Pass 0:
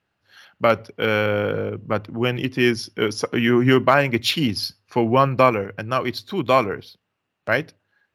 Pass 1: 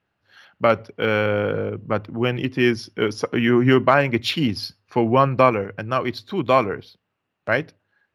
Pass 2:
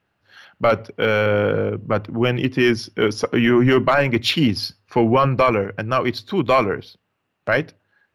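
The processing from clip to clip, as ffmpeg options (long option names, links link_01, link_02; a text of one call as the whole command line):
ffmpeg -i in.wav -af "aemphasis=mode=reproduction:type=cd" out.wav
ffmpeg -i in.wav -af "apsyclip=12.5dB,volume=-8.5dB" out.wav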